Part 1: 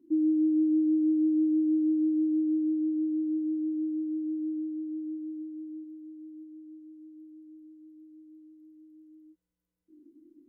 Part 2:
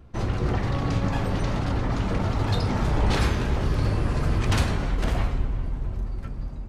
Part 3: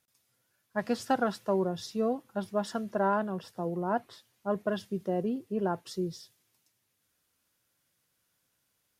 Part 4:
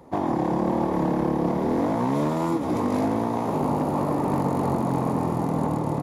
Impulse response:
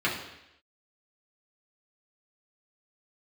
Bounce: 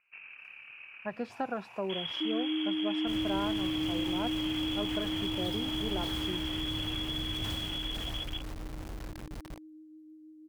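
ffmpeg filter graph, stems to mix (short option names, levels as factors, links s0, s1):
-filter_complex "[0:a]adelay=2100,volume=0.891[s0];[1:a]acrusher=bits=4:mix=0:aa=0.000001,adelay=1750,volume=0.562,asplit=2[s1][s2];[s2]volume=0.501[s3];[2:a]bass=f=250:g=-2,treble=f=4000:g=-15,adelay=300,volume=0.944[s4];[3:a]highpass=f=780:w=0.5412,highpass=f=780:w=1.3066,highshelf=f=2100:g=11.5,volume=0.112,asplit=2[s5][s6];[s6]volume=0.668[s7];[s1][s5]amix=inputs=2:normalize=0,lowpass=f=2900:t=q:w=0.5098,lowpass=f=2900:t=q:w=0.6013,lowpass=f=2900:t=q:w=0.9,lowpass=f=2900:t=q:w=2.563,afreqshift=-3400,acompressor=threshold=0.0355:ratio=6,volume=1[s8];[s3][s7]amix=inputs=2:normalize=0,aecho=0:1:1174:1[s9];[s0][s4][s8][s9]amix=inputs=4:normalize=0,acompressor=threshold=0.00891:ratio=1.5"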